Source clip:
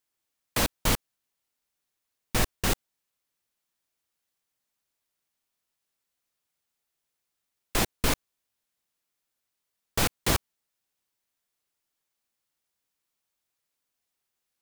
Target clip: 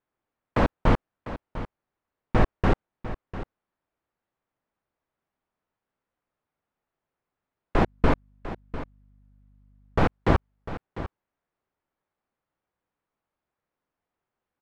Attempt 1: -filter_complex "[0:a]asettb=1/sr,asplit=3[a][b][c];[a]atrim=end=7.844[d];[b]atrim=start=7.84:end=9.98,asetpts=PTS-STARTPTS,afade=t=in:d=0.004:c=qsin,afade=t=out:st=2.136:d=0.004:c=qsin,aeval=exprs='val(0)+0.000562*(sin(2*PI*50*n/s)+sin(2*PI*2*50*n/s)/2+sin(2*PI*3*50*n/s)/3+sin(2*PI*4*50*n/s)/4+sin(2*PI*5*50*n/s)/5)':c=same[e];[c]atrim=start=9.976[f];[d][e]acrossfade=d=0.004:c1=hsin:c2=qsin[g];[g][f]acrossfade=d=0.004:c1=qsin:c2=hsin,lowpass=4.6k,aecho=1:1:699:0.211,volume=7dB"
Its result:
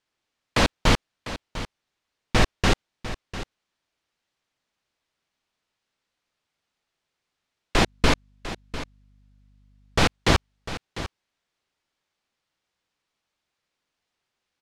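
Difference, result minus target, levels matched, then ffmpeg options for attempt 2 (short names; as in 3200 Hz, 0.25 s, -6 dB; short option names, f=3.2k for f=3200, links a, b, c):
4000 Hz band +13.5 dB
-filter_complex "[0:a]asettb=1/sr,asplit=3[a][b][c];[a]atrim=end=7.844[d];[b]atrim=start=7.84:end=9.98,asetpts=PTS-STARTPTS,afade=t=in:d=0.004:c=qsin,afade=t=out:st=2.136:d=0.004:c=qsin,aeval=exprs='val(0)+0.000562*(sin(2*PI*50*n/s)+sin(2*PI*2*50*n/s)/2+sin(2*PI*3*50*n/s)/3+sin(2*PI*4*50*n/s)/4+sin(2*PI*5*50*n/s)/5)':c=same[e];[c]atrim=start=9.976[f];[d][e]acrossfade=d=0.004:c1=hsin:c2=qsin[g];[g][f]acrossfade=d=0.004:c1=qsin:c2=hsin,lowpass=1.3k,aecho=1:1:699:0.211,volume=7dB"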